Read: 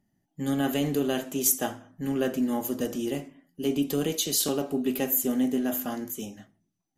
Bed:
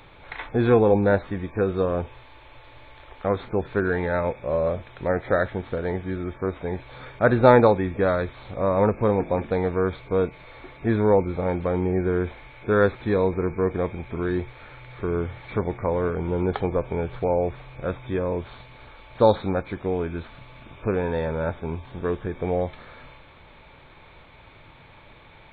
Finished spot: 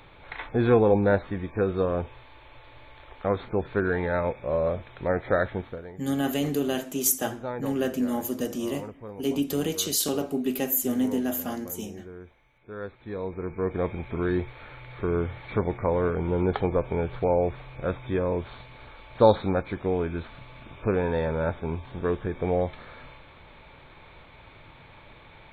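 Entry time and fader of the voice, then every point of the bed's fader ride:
5.60 s, 0.0 dB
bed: 5.60 s -2 dB
5.98 s -19.5 dB
12.70 s -19.5 dB
13.91 s -0.5 dB

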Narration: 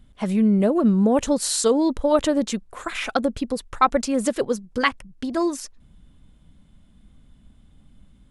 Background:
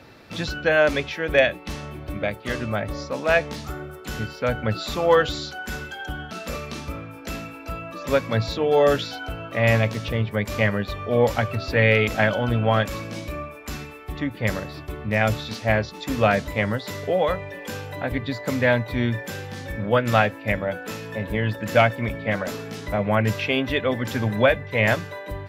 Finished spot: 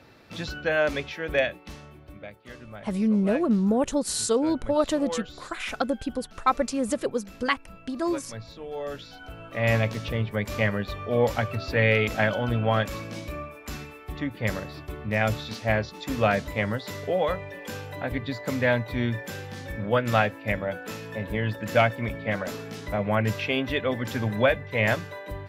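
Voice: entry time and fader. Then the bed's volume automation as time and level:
2.65 s, -4.5 dB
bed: 1.33 s -5.5 dB
2.32 s -16.5 dB
8.86 s -16.5 dB
9.74 s -3.5 dB

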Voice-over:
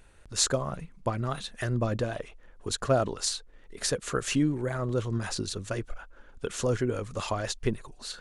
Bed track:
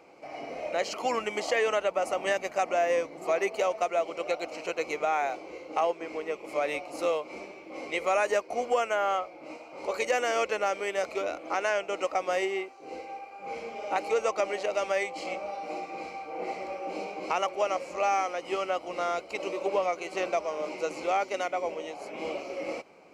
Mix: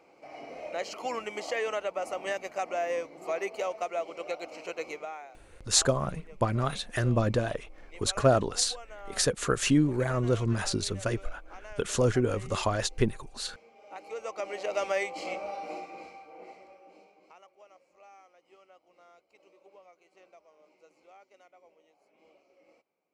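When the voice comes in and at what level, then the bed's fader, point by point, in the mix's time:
5.35 s, +2.5 dB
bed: 4.89 s -5 dB
5.28 s -19 dB
13.75 s -19 dB
14.77 s -1 dB
15.60 s -1 dB
17.46 s -28.5 dB

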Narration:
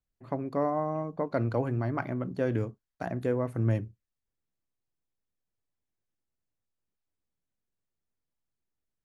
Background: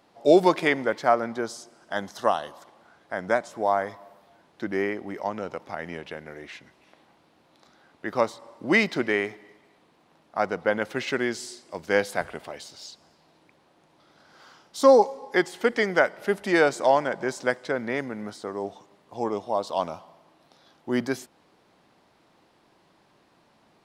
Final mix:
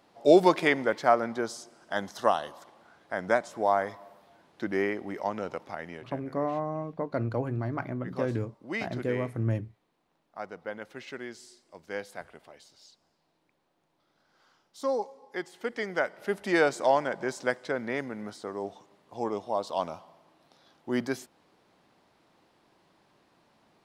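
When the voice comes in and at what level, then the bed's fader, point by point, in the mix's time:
5.80 s, -1.5 dB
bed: 5.57 s -1.5 dB
6.50 s -13.5 dB
15.30 s -13.5 dB
16.52 s -3.5 dB

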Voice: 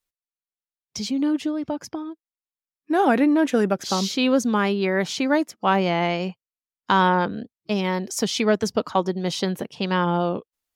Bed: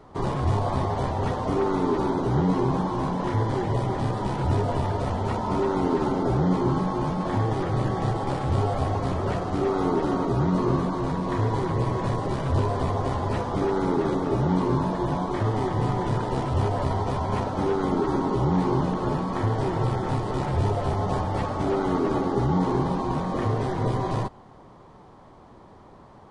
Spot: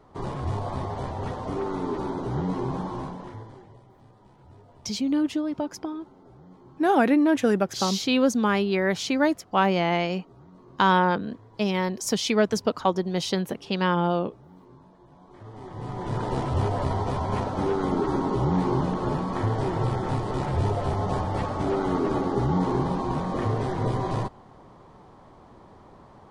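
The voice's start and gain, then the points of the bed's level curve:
3.90 s, -1.5 dB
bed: 2.96 s -5.5 dB
3.84 s -28 dB
15.10 s -28 dB
16.25 s -1 dB

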